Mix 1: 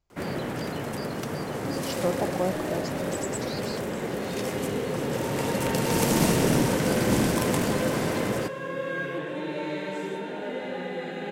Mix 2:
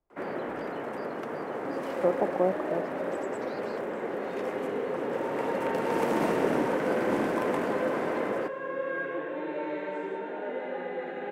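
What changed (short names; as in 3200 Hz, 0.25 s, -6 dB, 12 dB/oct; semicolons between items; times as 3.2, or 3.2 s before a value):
speech: add tilt -3 dB/oct; master: add three-band isolator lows -21 dB, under 260 Hz, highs -20 dB, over 2200 Hz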